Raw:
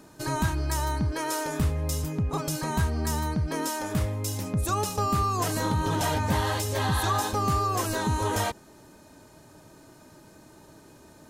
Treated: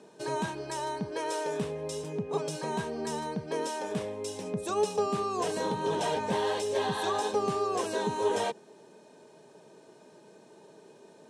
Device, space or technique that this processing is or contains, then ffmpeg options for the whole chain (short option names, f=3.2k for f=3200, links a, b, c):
television speaker: -af "highpass=f=180:w=0.5412,highpass=f=180:w=1.3066,equalizer=f=290:t=q:w=4:g=-10,equalizer=f=430:t=q:w=4:g=10,equalizer=f=1.3k:t=q:w=4:g=-9,equalizer=f=2k:t=q:w=4:g=-5,equalizer=f=4.7k:t=q:w=4:g=-6,equalizer=f=6.8k:t=q:w=4:g=-7,lowpass=f=8.3k:w=0.5412,lowpass=f=8.3k:w=1.3066,volume=-1.5dB"